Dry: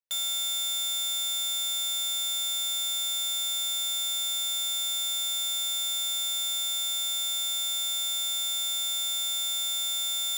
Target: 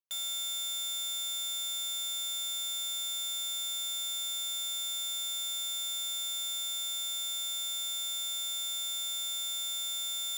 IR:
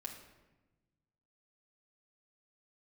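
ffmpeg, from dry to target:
-filter_complex "[0:a]asplit=2[s0][s1];[1:a]atrim=start_sample=2205,adelay=93[s2];[s1][s2]afir=irnorm=-1:irlink=0,volume=0.178[s3];[s0][s3]amix=inputs=2:normalize=0,volume=0.501"

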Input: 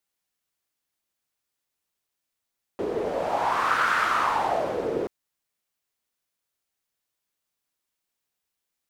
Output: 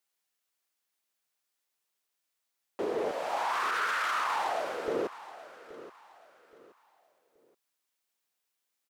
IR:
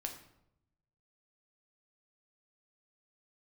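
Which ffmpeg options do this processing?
-af "asetnsamples=n=441:p=0,asendcmd='3.11 highpass f 1300;4.88 highpass f 370',highpass=f=440:p=1,alimiter=limit=0.075:level=0:latency=1:release=13,aecho=1:1:825|1650|2475:0.158|0.0507|0.0162"

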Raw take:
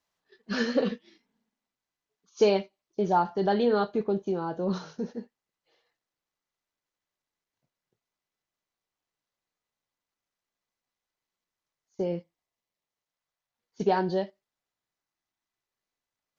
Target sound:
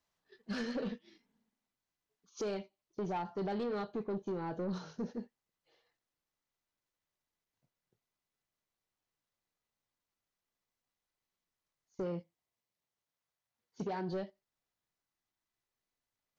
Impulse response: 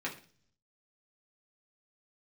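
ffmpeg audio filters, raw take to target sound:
-filter_complex "[0:a]lowshelf=f=180:g=6,alimiter=limit=0.0794:level=0:latency=1:release=397,asoftclip=type=tanh:threshold=0.0376,asettb=1/sr,asplit=3[s0][s1][s2];[s0]atrim=end=12.034[s3];[s1]atrim=start=12.03:end=14.13,asetpts=PTS-STARTPTS,afade=t=in:d=0.004:c=qsin,afade=t=out:st=2.096:d=0.004:c=qsin,highpass=54[s4];[s2]atrim=start=14.126[s5];[s3][s4]acrossfade=d=0.004:c1=hsin:c2=qsin[s6];[s6][s5]acrossfade=d=0.004:c1=qsin:c2=hsin,volume=0.708"

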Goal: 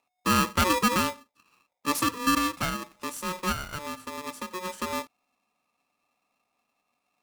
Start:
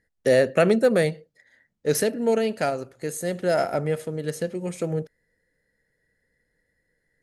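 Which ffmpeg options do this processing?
-filter_complex "[0:a]asettb=1/sr,asplit=3[s0][s1][s2];[s0]atrim=end=2.004[s3];[s1]atrim=start=2:end=2.92,asetpts=PTS-STARTPTS,afade=t=in:d=0.004:c=qsin,afade=t=out:st=0.916:d=0.004:c=qsin,aecho=1:1:2.1:0.5,atrim=end_sample=40572[s4];[s2]atrim=start=2.916[s5];[s3][s4]acrossfade=d=0.004:c1=hsin:c2=qsin[s6];[s6][s5]acrossfade=d=0.004:c1=qsin:c2=hsin,asettb=1/sr,asplit=3[s7][s8][s9];[s7]atrim=end=3.524[s10];[s8]atrim=start=3.52:end=4.51,asetpts=PTS-STARTPTS,afade=t=in:d=0.004:c=qsin,afade=t=out:st=0.986:d=0.004:c=qsin,acompressor=threshold=0.0447:ratio=6[s11];[s9]atrim=start=4.506[s12];[s10][s11]acrossfade=d=0.004:c1=hsin:c2=qsin[s13];[s13][s12]acrossfade=d=0.004:c1=qsin:c2=hsin,aeval=exprs='val(0)*sgn(sin(2*PI*730*n/s))':c=same,volume=0.562"

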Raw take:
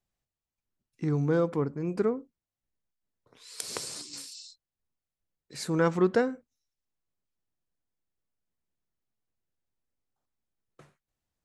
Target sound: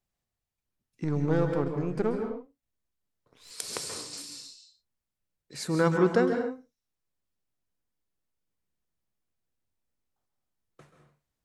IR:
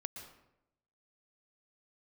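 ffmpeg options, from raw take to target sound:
-filter_complex "[0:a]asettb=1/sr,asplit=3[s0][s1][s2];[s0]atrim=end=1.044[s3];[s1]atrim=start=1.04:end=3.51,asetpts=PTS-STARTPTS,afade=t=in:d=0.004:c=qsin,afade=t=out:st=2.466:d=0.004:c=qsin,aeval=exprs='if(lt(val(0),0),0.447*val(0),val(0))':c=same[s4];[s2]atrim=start=3.506[s5];[s3][s4]acrossfade=d=0.004:c1=hsin:c2=qsin[s6];[s6][s5]acrossfade=d=0.004:c1=qsin:c2=hsin[s7];[1:a]atrim=start_sample=2205,afade=t=out:st=0.31:d=0.01,atrim=end_sample=14112,asetrate=38367,aresample=44100[s8];[s7][s8]afir=irnorm=-1:irlink=0,volume=1.41"

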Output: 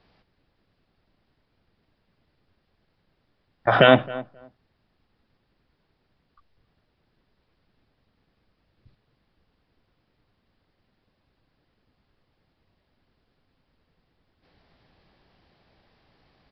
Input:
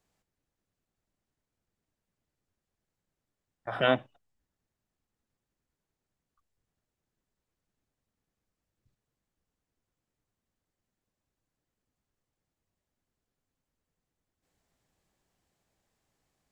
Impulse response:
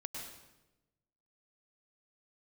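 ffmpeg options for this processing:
-filter_complex "[0:a]asplit=2[s0][s1];[s1]adelay=266,lowpass=f=1300:p=1,volume=0.0708,asplit=2[s2][s3];[s3]adelay=266,lowpass=f=1300:p=1,volume=0.16[s4];[s2][s4]amix=inputs=2:normalize=0[s5];[s0][s5]amix=inputs=2:normalize=0,aresample=11025,aresample=44100,alimiter=level_in=7.5:limit=0.891:release=50:level=0:latency=1,volume=0.891"

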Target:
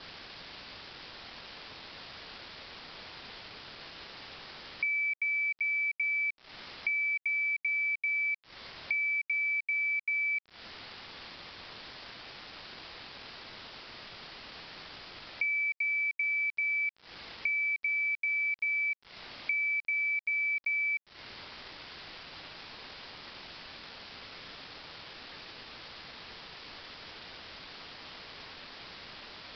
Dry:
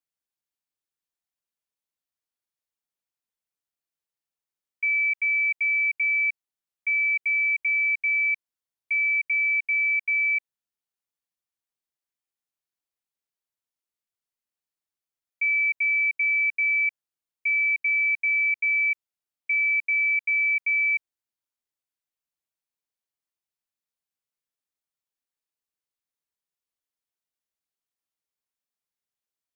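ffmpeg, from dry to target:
-af "aeval=exprs='val(0)+0.5*0.0168*sgn(val(0))':c=same,adynamicequalizer=threshold=0.00891:dfrequency=2100:dqfactor=7.9:tfrequency=2100:tqfactor=7.9:attack=5:release=100:ratio=0.375:range=2.5:mode=boostabove:tftype=bell,acompressor=threshold=0.0178:ratio=6,aresample=11025,aeval=exprs='val(0)*gte(abs(val(0)),0.00299)':c=same,aresample=44100,volume=1.58"

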